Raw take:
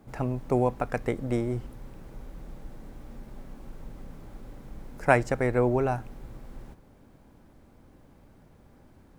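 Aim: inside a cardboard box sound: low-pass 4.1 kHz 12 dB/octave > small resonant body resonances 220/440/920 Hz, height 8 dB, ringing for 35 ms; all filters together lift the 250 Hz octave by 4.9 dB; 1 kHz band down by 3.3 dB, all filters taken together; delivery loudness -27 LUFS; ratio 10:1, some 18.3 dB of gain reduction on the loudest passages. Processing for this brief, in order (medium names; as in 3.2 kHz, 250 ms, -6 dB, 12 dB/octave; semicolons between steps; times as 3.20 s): peaking EQ 250 Hz +6 dB; peaking EQ 1 kHz -5.5 dB; compression 10:1, threshold -36 dBFS; low-pass 4.1 kHz 12 dB/octave; small resonant body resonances 220/440/920 Hz, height 8 dB, ringing for 35 ms; trim +13 dB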